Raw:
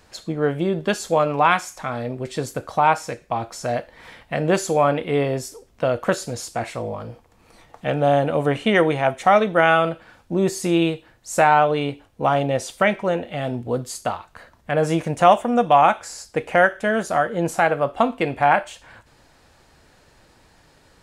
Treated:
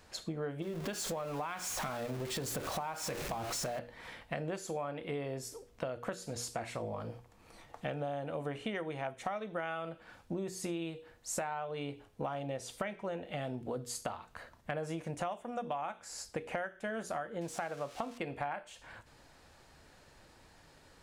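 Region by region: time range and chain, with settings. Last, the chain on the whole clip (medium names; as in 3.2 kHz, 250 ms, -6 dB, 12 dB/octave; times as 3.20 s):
0.62–3.79 s: jump at every zero crossing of -27 dBFS + compression 2:1, threshold -27 dBFS
17.41–18.18 s: zero-crossing glitches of -19.5 dBFS + distance through air 72 m
whole clip: hum notches 60/120/180/240/300/360/420/480 Hz; compression 12:1, threshold -29 dBFS; trim -5.5 dB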